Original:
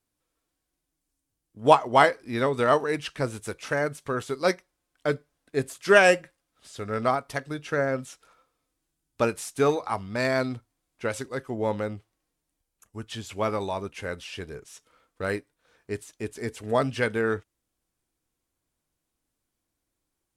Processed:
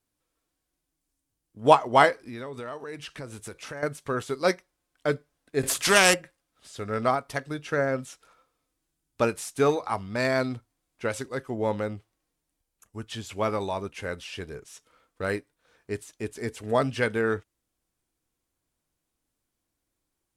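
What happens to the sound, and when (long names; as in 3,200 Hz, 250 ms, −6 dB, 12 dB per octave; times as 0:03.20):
0:02.22–0:03.83: downward compressor 4 to 1, threshold −36 dBFS
0:05.63–0:06.14: every bin compressed towards the loudest bin 2 to 1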